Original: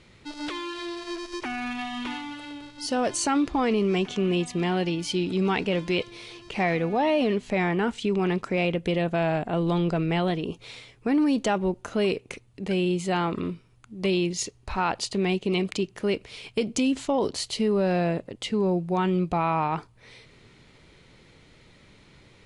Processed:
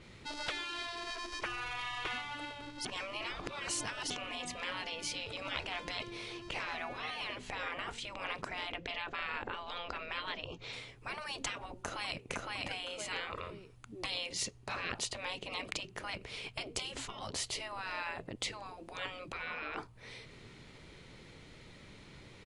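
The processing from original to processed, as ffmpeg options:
-filter_complex "[0:a]asettb=1/sr,asplit=3[a][b][c];[a]atrim=end=8.764[d];[b]atrim=start=8.76:end=10.73,asetpts=PTS-STARTPTS,afade=t=in:d=0.004:c=qsin,afade=t=out:st=1.966:d=0.004:c=qsin,lowpass=f=6.7k:w=0.5412,lowpass=f=6.7k:w=1.3066[e];[c]atrim=start=10.726[f];[d][e]acrossfade=d=0.004:c1=hsin:c2=qsin[g];[g][f]acrossfade=d=0.004:c1=qsin:c2=hsin,asplit=2[h][i];[i]afade=t=in:st=11.78:d=0.01,afade=t=out:st=12.24:d=0.01,aecho=0:1:510|1020|1530:0.794328|0.158866|0.0317731[j];[h][j]amix=inputs=2:normalize=0,asplit=3[k][l][m];[k]atrim=end=2.852[n];[l]atrim=start=2.848:end=4.102,asetpts=PTS-STARTPTS,areverse[o];[m]atrim=start=4.098[p];[n][o]acrossfade=d=0.004:c1=hsin:c2=hsin[q];[q][p]acrossfade=d=0.004:c1=hsin:c2=hsin,afftfilt=real='re*lt(hypot(re,im),0.0794)':imag='im*lt(hypot(re,im),0.0794)':win_size=1024:overlap=0.75,adynamicequalizer=threshold=0.00251:dfrequency=2800:dqfactor=0.7:tfrequency=2800:tqfactor=0.7:attack=5:release=100:ratio=0.375:range=2:mode=cutabove:tftype=highshelf"

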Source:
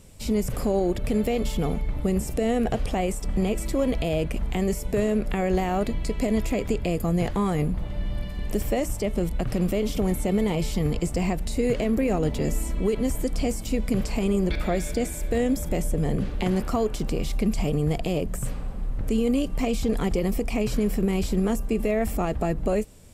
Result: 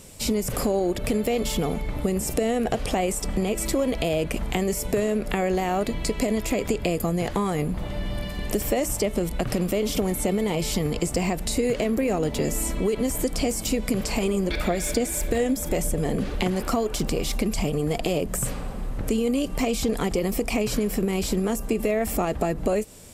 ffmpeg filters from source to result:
-filter_complex "[0:a]asplit=3[a][b][c];[a]afade=t=out:st=14.16:d=0.02[d];[b]aphaser=in_gain=1:out_gain=1:delay=4.7:decay=0.31:speed=1.7:type=triangular,afade=t=in:st=14.16:d=0.02,afade=t=out:st=18.15:d=0.02[e];[c]afade=t=in:st=18.15:d=0.02[f];[d][e][f]amix=inputs=3:normalize=0,lowshelf=f=90:g=-7,acompressor=threshold=-26dB:ratio=6,bass=f=250:g=-3,treble=f=4k:g=3,volume=7dB"

